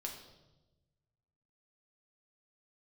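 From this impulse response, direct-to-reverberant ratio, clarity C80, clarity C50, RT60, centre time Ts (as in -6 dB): 0.5 dB, 8.5 dB, 6.5 dB, 1.1 s, 29 ms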